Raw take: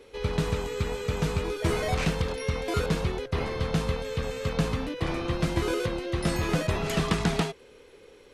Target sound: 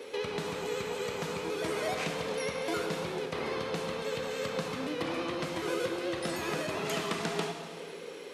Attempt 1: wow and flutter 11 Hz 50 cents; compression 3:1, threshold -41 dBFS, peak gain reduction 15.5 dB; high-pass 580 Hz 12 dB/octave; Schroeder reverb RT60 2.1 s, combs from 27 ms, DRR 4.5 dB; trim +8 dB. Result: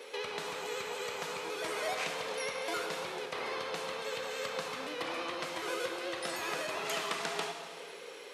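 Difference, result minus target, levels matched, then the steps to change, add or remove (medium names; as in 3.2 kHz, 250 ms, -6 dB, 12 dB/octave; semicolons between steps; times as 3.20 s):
250 Hz band -7.5 dB
change: high-pass 250 Hz 12 dB/octave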